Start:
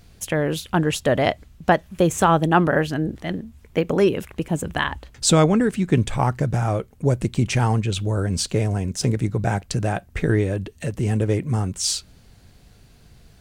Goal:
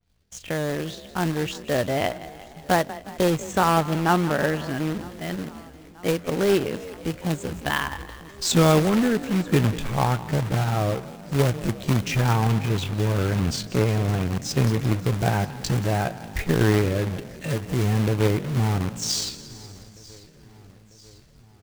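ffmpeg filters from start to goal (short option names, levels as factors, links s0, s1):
-filter_complex "[0:a]asplit=2[s0][s1];[s1]asplit=5[s2][s3][s4][s5][s6];[s2]adelay=110,afreqshift=31,volume=0.168[s7];[s3]adelay=220,afreqshift=62,volume=0.0944[s8];[s4]adelay=330,afreqshift=93,volume=0.0525[s9];[s5]adelay=440,afreqshift=124,volume=0.0295[s10];[s6]adelay=550,afreqshift=155,volume=0.0166[s11];[s7][s8][s9][s10][s11]amix=inputs=5:normalize=0[s12];[s0][s12]amix=inputs=2:normalize=0,dynaudnorm=f=570:g=5:m=2,agate=range=0.0224:threshold=0.0112:ratio=3:detection=peak,lowpass=f=7400:w=0.5412,lowpass=f=7400:w=1.3066,atempo=0.62,acrusher=bits=2:mode=log:mix=0:aa=0.000001,asplit=2[s13][s14];[s14]aecho=0:1:945|1890|2835|3780:0.0668|0.0394|0.0233|0.0137[s15];[s13][s15]amix=inputs=2:normalize=0,adynamicequalizer=threshold=0.02:dfrequency=3700:dqfactor=0.7:tfrequency=3700:tqfactor=0.7:attack=5:release=100:ratio=0.375:range=3:mode=cutabove:tftype=highshelf,volume=0.501"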